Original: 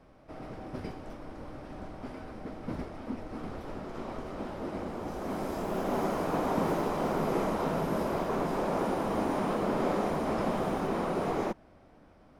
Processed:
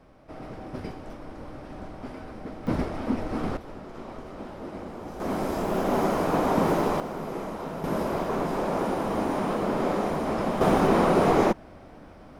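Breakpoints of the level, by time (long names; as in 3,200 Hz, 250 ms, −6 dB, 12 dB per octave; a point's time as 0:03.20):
+3 dB
from 0:02.67 +10 dB
from 0:03.57 −1 dB
from 0:05.20 +6 dB
from 0:07.00 −4 dB
from 0:07.84 +3 dB
from 0:10.61 +10.5 dB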